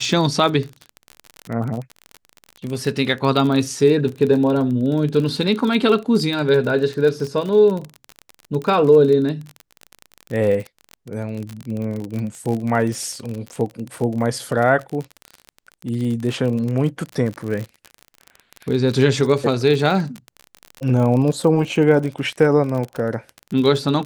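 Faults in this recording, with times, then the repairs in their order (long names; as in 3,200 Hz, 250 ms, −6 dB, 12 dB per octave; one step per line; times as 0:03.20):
surface crackle 35 per second −24 dBFS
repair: click removal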